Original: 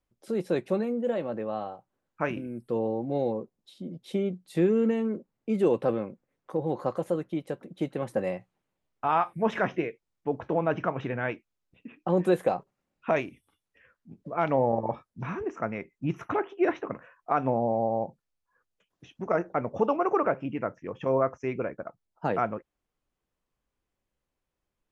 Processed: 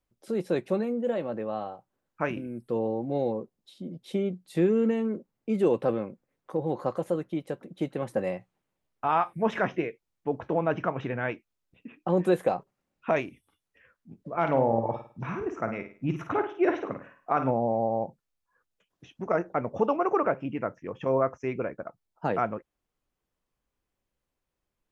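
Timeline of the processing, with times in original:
14.29–17.51 flutter echo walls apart 9 m, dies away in 0.39 s

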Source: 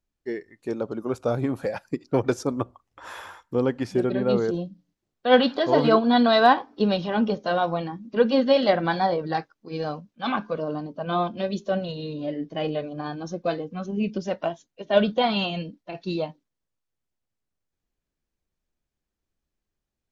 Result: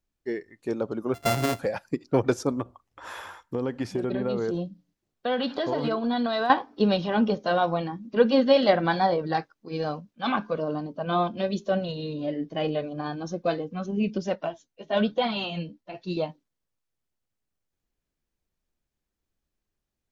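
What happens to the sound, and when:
1.14–1.59 sample sorter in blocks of 64 samples
2.56–6.5 compressor, threshold -23 dBFS
14.35–16.17 flange 1.1 Hz, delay 4.5 ms, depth 9.8 ms, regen +24%

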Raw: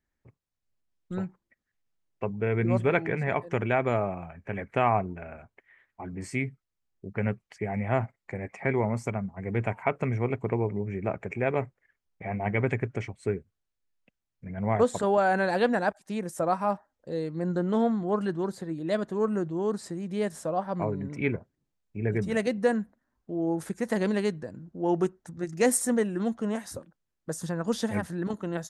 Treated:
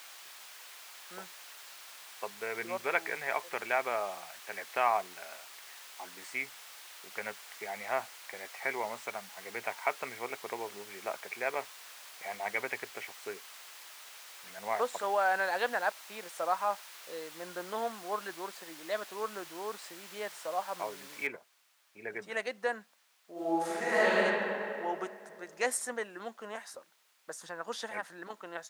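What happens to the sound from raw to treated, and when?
1.17–2.57 bell 3300 Hz -12 dB 0.24 oct
21.27 noise floor step -44 dB -63 dB
23.32–24.17 reverb throw, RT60 2.7 s, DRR -11.5 dB
whole clip: HPF 830 Hz 12 dB/oct; high shelf 5800 Hz -10.5 dB

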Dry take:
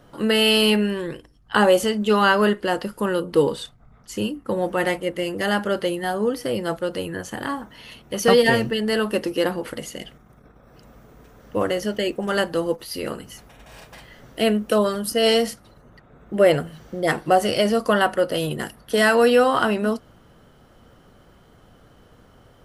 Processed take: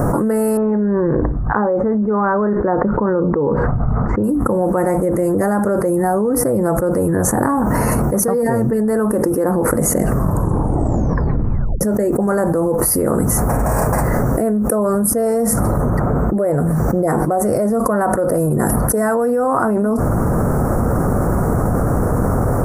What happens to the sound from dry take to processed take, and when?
0.57–4.24 LPF 2000 Hz 24 dB/oct
10 tape stop 1.81 s
whole clip: Chebyshev band-stop 1100–9000 Hz, order 2; bell 100 Hz +4.5 dB 2.9 oct; fast leveller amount 100%; gain -4.5 dB

